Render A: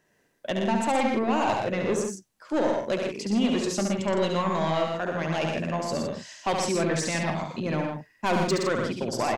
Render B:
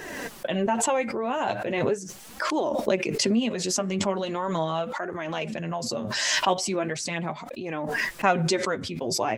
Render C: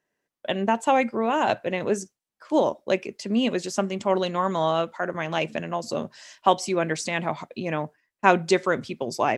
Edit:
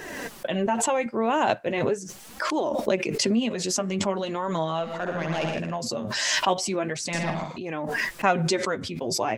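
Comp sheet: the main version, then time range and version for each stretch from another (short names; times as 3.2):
B
1.06–1.69 from C
4.91–5.7 from A, crossfade 0.24 s
7.13–7.58 from A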